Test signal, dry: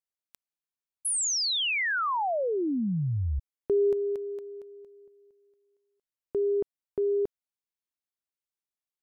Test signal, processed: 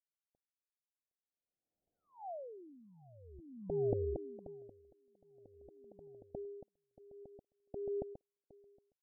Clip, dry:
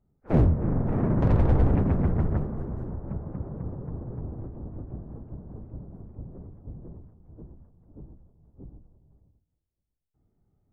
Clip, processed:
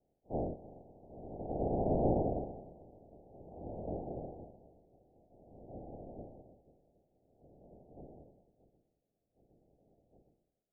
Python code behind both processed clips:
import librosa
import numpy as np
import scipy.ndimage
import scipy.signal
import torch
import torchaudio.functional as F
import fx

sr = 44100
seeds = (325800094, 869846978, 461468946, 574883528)

p1 = fx.spec_clip(x, sr, under_db=28)
p2 = scipy.signal.sosfilt(scipy.signal.butter(12, 770.0, 'lowpass', fs=sr, output='sos'), p1)
p3 = p2 + fx.echo_feedback(p2, sr, ms=764, feedback_pct=36, wet_db=-4, dry=0)
p4 = p3 * 10.0 ** (-24 * (0.5 - 0.5 * np.cos(2.0 * np.pi * 0.5 * np.arange(len(p3)) / sr)) / 20.0)
y = p4 * 10.0 ** (-7.0 / 20.0)